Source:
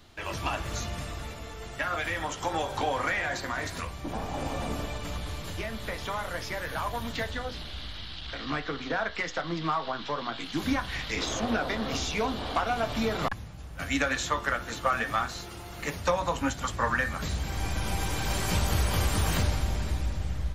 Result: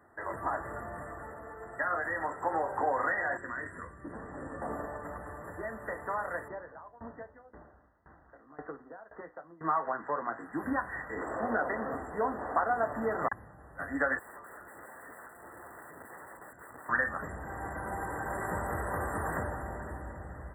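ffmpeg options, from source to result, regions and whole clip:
ffmpeg -i in.wav -filter_complex "[0:a]asettb=1/sr,asplit=3[link_01][link_02][link_03];[link_01]atrim=end=3.374[link_04];[link_02]atrim=start=3.37:end=4.62,asetpts=PTS-STARTPTS,afade=type=in:duration=0.004:curve=qsin,afade=type=out:start_time=1.246:duration=0.004:curve=qsin,lowpass=frequency=9500:width=0.5412,lowpass=frequency=9500:width=1.3066,equalizer=frequency=770:width=1.5:gain=-15[link_05];[link_03]atrim=start=4.616[link_06];[link_04][link_05]acrossfade=duration=0.004:curve1=hsin:curve2=qsin[link_07];[link_07][link_06]acrossfade=duration=0.004:curve1=qsin:curve2=hsin,asettb=1/sr,asplit=3[link_08][link_09][link_10];[link_08]atrim=end=6.484[link_11];[link_09]atrim=start=6.48:end=9.61,asetpts=PTS-STARTPTS,afade=type=in:duration=0.004:curve=qsin,afade=type=out:start_time=3.126:duration=0.004:curve=qsin,lowpass=1100,aeval=exprs='val(0)*pow(10,-22*if(lt(mod(1.9*n/s,1),2*abs(1.9)/1000),1-mod(1.9*n/s,1)/(2*abs(1.9)/1000),(mod(1.9*n/s,1)-2*abs(1.9)/1000)/(1-2*abs(1.9)/1000))/20)':channel_layout=same[link_12];[link_10]atrim=start=9.606[link_13];[link_11][link_12]acrossfade=duration=0.004:curve1=hsin:curve2=qsin[link_14];[link_14][link_13]acrossfade=duration=0.004:curve1=qsin:curve2=hsin,asettb=1/sr,asplit=3[link_15][link_16][link_17];[link_15]atrim=end=14.194[link_18];[link_16]atrim=start=14.19:end=16.89,asetpts=PTS-STARTPTS,afade=type=in:duration=0.004:curve=qsin,afade=type=out:start_time=2.696:duration=0.004:curve=qsin,asplit=2[link_19][link_20];[link_20]adelay=39,volume=-13.5dB[link_21];[link_19][link_21]amix=inputs=2:normalize=0,atrim=end_sample=119070,acrossover=split=1900|6800[link_22][link_23][link_24];[link_22]acompressor=threshold=-39dB:ratio=4[link_25];[link_23]acompressor=threshold=-47dB:ratio=4[link_26];[link_24]acompressor=threshold=-54dB:ratio=4[link_27];[link_25][link_26][link_27]amix=inputs=3:normalize=0,aeval=exprs='(mod(79.4*val(0)+1,2)-1)/79.4':channel_layout=same[link_28];[link_17]atrim=start=16.886[link_29];[link_18][link_28]acrossfade=duration=0.004:curve1=hsin:curve2=qsin[link_30];[link_30][link_29]acrossfade=duration=0.004:curve1=qsin:curve2=hsin,highpass=58,afftfilt=real='re*(1-between(b*sr/4096,2000,7400))':imag='im*(1-between(b*sr/4096,2000,7400))':win_size=4096:overlap=0.75,bass=frequency=250:gain=-12,treble=frequency=4000:gain=-14" out.wav

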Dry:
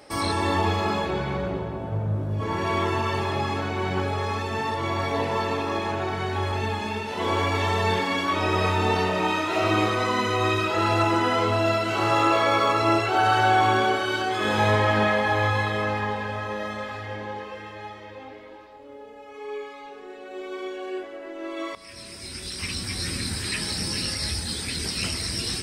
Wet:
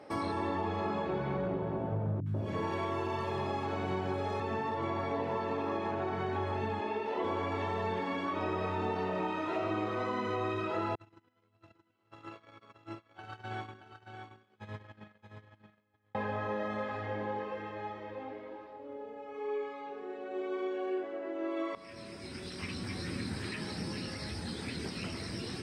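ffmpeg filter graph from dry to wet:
ffmpeg -i in.wav -filter_complex "[0:a]asettb=1/sr,asplit=3[link_01][link_02][link_03];[link_01]atrim=end=2.204[link_04];[link_02]atrim=start=2.2:end=4.4,asetpts=PTS-STARTPTS,afade=type=in:duration=0.004:curve=qsin,afade=type=out:start_time=2.196:duration=0.004:curve=qsin,aemphasis=mode=production:type=cd,acrossover=split=230|1500[link_05][link_06][link_07];[link_07]adelay=60[link_08];[link_06]adelay=140[link_09];[link_05][link_09][link_08]amix=inputs=3:normalize=0,atrim=end_sample=97020[link_10];[link_03]atrim=start=4.396[link_11];[link_04][link_10]acrossfade=duration=0.004:curve1=hsin:curve2=qsin[link_12];[link_12][link_11]acrossfade=duration=0.004:curve1=qsin:curve2=hsin,asettb=1/sr,asplit=3[link_13][link_14][link_15];[link_13]atrim=end=6.804[link_16];[link_14]atrim=start=6.8:end=7.24,asetpts=PTS-STARTPTS,afade=type=in:duration=0.004:curve=qsin,afade=type=out:start_time=0.436:duration=0.004:curve=qsin,bandreject=frequency=1500:width=20,acrossover=split=4600[link_17][link_18];[link_18]acompressor=threshold=-53dB:ratio=4:attack=1:release=60[link_19];[link_17][link_19]amix=inputs=2:normalize=0,lowshelf=frequency=230:width_type=q:width=1.5:gain=-11[link_20];[link_15]atrim=start=7.236[link_21];[link_16][link_20]acrossfade=duration=0.004:curve1=hsin:curve2=qsin[link_22];[link_22][link_21]acrossfade=duration=0.004:curve1=qsin:curve2=hsin,asettb=1/sr,asplit=3[link_23][link_24][link_25];[link_23]atrim=end=10.954[link_26];[link_24]atrim=start=10.95:end=16.15,asetpts=PTS-STARTPTS,afade=type=in:duration=0.004:curve=qsin,afade=type=out:start_time=5.196:duration=0.004:curve=qsin,agate=range=-43dB:threshold=-18dB:ratio=16:release=100:detection=peak,equalizer=frequency=660:width=0.46:gain=-14.5,aecho=1:1:625:0.422,atrim=end_sample=229320[link_27];[link_25]atrim=start=16.146[link_28];[link_26][link_27]acrossfade=duration=0.004:curve1=hsin:curve2=qsin[link_29];[link_29][link_28]acrossfade=duration=0.004:curve1=qsin:curve2=hsin,highpass=120,acompressor=threshold=-29dB:ratio=6,lowpass=frequency=1100:poles=1" out.wav

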